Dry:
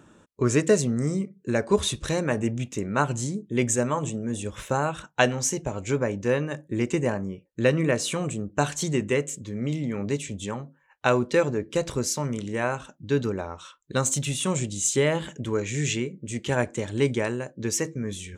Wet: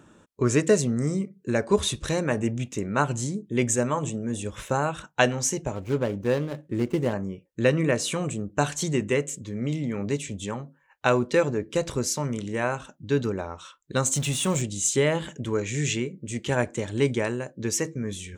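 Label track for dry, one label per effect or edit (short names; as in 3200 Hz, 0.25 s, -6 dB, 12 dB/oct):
5.750000	7.130000	median filter over 25 samples
14.150000	14.620000	zero-crossing step of -35 dBFS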